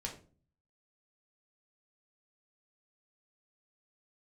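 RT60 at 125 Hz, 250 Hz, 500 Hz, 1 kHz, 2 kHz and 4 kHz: 0.75, 0.60, 0.45, 0.35, 0.30, 0.25 s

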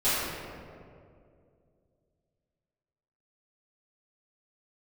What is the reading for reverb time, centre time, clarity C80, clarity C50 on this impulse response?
2.4 s, 0.145 s, -1.0 dB, -3.5 dB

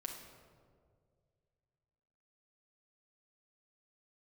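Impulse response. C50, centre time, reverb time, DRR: 4.5 dB, 46 ms, 2.0 s, -0.5 dB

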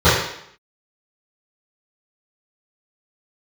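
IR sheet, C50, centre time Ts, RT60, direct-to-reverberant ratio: 1.5 dB, 59 ms, 0.70 s, -17.5 dB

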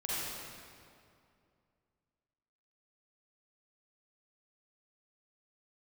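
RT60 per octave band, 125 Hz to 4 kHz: 2.8, 2.7, 2.5, 2.3, 2.0, 1.7 s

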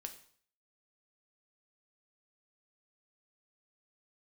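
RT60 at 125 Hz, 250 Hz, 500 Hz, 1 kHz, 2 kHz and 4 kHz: 0.55, 0.55, 0.55, 0.55, 0.50, 0.50 s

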